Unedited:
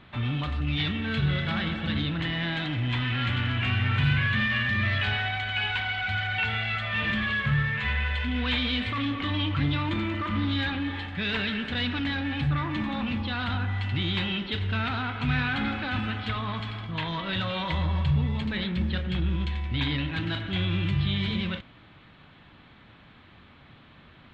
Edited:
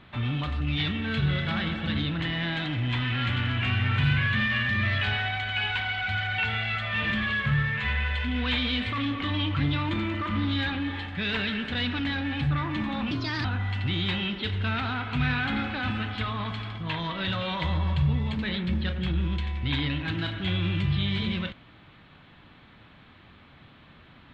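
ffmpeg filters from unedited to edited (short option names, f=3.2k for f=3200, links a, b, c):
-filter_complex "[0:a]asplit=3[a][b][c];[a]atrim=end=13.114[d];[b]atrim=start=13.11:end=13.53,asetpts=PTS-STARTPTS,asetrate=55125,aresample=44100[e];[c]atrim=start=13.526[f];[d][e]acrossfade=d=0.004:c1=hsin:c2=hsin[g];[g][f]acrossfade=d=0.004:c1=hsin:c2=hsin"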